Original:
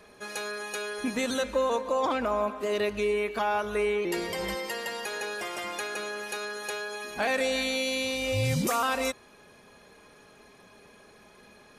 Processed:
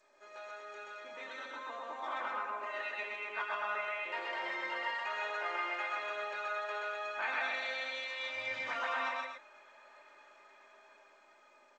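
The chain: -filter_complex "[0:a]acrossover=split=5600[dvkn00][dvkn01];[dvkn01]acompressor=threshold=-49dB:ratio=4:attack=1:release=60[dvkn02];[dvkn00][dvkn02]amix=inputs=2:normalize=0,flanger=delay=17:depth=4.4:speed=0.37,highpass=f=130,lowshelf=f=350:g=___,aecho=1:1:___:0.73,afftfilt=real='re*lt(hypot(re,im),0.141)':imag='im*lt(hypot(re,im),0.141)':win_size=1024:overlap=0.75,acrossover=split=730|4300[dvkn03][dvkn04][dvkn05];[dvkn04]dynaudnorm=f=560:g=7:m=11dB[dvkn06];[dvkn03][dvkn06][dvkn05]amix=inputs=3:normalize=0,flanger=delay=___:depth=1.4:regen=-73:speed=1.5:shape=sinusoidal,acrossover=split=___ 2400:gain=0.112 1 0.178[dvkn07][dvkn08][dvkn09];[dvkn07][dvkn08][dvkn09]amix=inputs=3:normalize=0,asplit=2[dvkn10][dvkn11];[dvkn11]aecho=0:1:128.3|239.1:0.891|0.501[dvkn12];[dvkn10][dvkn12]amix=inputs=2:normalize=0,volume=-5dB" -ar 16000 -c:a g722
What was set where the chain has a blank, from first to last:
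-6, 3.3, 6.5, 360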